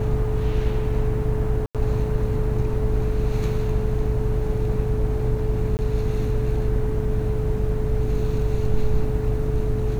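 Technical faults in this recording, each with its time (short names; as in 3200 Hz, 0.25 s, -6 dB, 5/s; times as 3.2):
hum 50 Hz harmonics 7 -26 dBFS
tone 430 Hz -28 dBFS
1.66–1.75 gap 87 ms
5.77–5.79 gap 19 ms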